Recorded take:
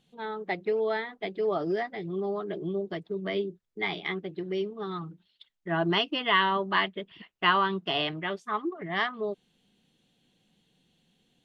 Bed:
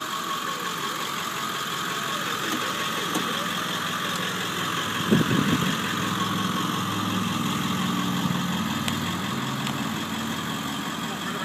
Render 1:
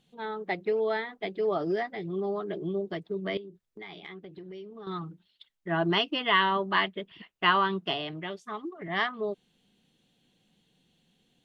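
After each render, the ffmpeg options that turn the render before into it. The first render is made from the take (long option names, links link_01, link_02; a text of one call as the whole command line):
ffmpeg -i in.wav -filter_complex "[0:a]asettb=1/sr,asplit=3[link_01][link_02][link_03];[link_01]atrim=end=3.374[link_04];[link_02]atrim=start=3.37:end=4.87,asetpts=PTS-STARTPTS,afade=type=in:duration=0.004:curve=qsin,afade=type=out:start_time=1.496:duration=0.004:curve=qsin,acompressor=threshold=-42dB:ratio=4:attack=3.2:release=140:knee=1:detection=peak[link_05];[link_03]atrim=start=4.866[link_06];[link_04][link_05]acrossfade=duration=0.004:curve1=hsin:curve2=qsin[link_07];[link_07][link_06]acrossfade=duration=0.004:curve1=qsin:curve2=hsin,asettb=1/sr,asplit=3[link_08][link_09][link_10];[link_08]atrim=end=7.934[link_11];[link_09]atrim=start=7.93:end=8.88,asetpts=PTS-STARTPTS,afade=type=in:duration=0.004:curve=qsin,afade=type=out:start_time=0.946:duration=0.004:curve=qsin,acrossover=split=860|2600[link_12][link_13][link_14];[link_12]acompressor=threshold=-35dB:ratio=4[link_15];[link_13]acompressor=threshold=-46dB:ratio=4[link_16];[link_14]acompressor=threshold=-37dB:ratio=4[link_17];[link_15][link_16][link_17]amix=inputs=3:normalize=0[link_18];[link_10]atrim=start=8.876[link_19];[link_11][link_18]acrossfade=duration=0.004:curve1=hsin:curve2=qsin[link_20];[link_20][link_19]acrossfade=duration=0.004:curve1=qsin:curve2=hsin" out.wav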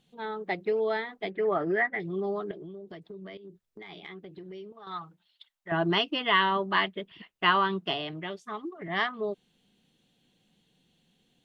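ffmpeg -i in.wav -filter_complex "[0:a]asettb=1/sr,asplit=3[link_01][link_02][link_03];[link_01]atrim=end=1.304[link_04];[link_02]atrim=start=1.3:end=2,asetpts=PTS-STARTPTS,afade=type=in:duration=0.004:curve=qsin,afade=type=out:start_time=0.696:duration=0.004:curve=qsin,lowpass=frequency=1900:width_type=q:width=3.8[link_05];[link_03]atrim=start=1.996[link_06];[link_04][link_05]acrossfade=duration=0.004:curve1=hsin:curve2=qsin[link_07];[link_07][link_06]acrossfade=duration=0.004:curve1=qsin:curve2=hsin,asettb=1/sr,asplit=3[link_08][link_09][link_10];[link_08]atrim=end=2.514[link_11];[link_09]atrim=start=2.51:end=3.91,asetpts=PTS-STARTPTS,afade=type=in:duration=0.004:curve=qsin,afade=type=out:start_time=1.396:duration=0.004:curve=qsin,acompressor=threshold=-40dB:ratio=6:attack=3.2:release=140:knee=1:detection=peak[link_12];[link_10]atrim=start=3.906[link_13];[link_11][link_12]acrossfade=duration=0.004:curve1=hsin:curve2=qsin[link_14];[link_14][link_13]acrossfade=duration=0.004:curve1=qsin:curve2=hsin,asettb=1/sr,asplit=3[link_15][link_16][link_17];[link_15]atrim=end=4.724[link_18];[link_16]atrim=start=4.72:end=5.72,asetpts=PTS-STARTPTS,afade=type=in:duration=0.004:curve=qsin,afade=type=out:start_time=0.996:duration=0.004:curve=qsin,lowshelf=frequency=500:width_type=q:width=1.5:gain=-10.5[link_19];[link_17]atrim=start=5.716[link_20];[link_18][link_19]acrossfade=duration=0.004:curve1=hsin:curve2=qsin[link_21];[link_21][link_20]acrossfade=duration=0.004:curve1=qsin:curve2=hsin" out.wav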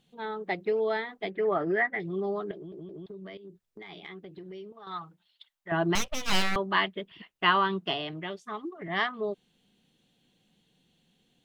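ffmpeg -i in.wav -filter_complex "[0:a]asettb=1/sr,asplit=3[link_01][link_02][link_03];[link_01]atrim=end=5.954[link_04];[link_02]atrim=start=5.95:end=6.56,asetpts=PTS-STARTPTS,afade=type=in:duration=0.004:curve=qsin,afade=type=out:start_time=0.606:duration=0.004:curve=qsin,aeval=exprs='abs(val(0))':channel_layout=same[link_05];[link_03]atrim=start=6.556[link_06];[link_04][link_05]acrossfade=duration=0.004:curve1=hsin:curve2=qsin[link_07];[link_07][link_06]acrossfade=duration=0.004:curve1=qsin:curve2=hsin,asplit=4[link_08][link_09][link_10][link_11];[link_08]atrim=end=2.722[link_12];[link_09]atrim=start=2.548:end=2.722[link_13];[link_10]atrim=start=2.548:end=2.722[link_14];[link_11]atrim=start=3.058[link_15];[link_12][link_13]acrossfade=duration=0.004:curve1=hsin:curve2=hsin[link_16];[link_16][link_14]acrossfade=duration=0.004:curve1=hsin:curve2=hsin[link_17];[link_17][link_15]acrossfade=duration=0.004:curve1=hsin:curve2=hsin" out.wav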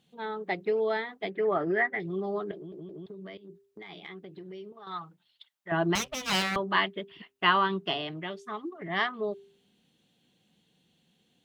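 ffmpeg -i in.wav -af "highpass=64,bandreject=frequency=132.3:width_type=h:width=4,bandreject=frequency=264.6:width_type=h:width=4,bandreject=frequency=396.9:width_type=h:width=4" out.wav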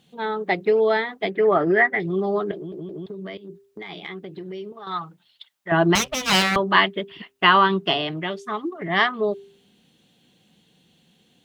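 ffmpeg -i in.wav -af "volume=9dB,alimiter=limit=-3dB:level=0:latency=1" out.wav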